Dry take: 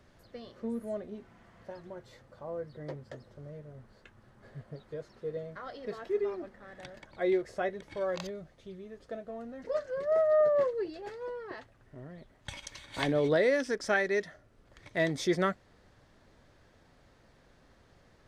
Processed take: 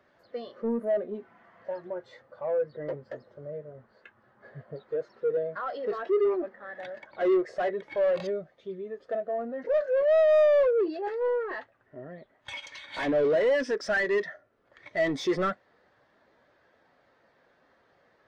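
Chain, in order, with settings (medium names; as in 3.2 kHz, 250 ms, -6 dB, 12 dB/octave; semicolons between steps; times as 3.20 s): overdrive pedal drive 28 dB, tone 3.9 kHz, clips at -15.5 dBFS; spectral contrast expander 1.5:1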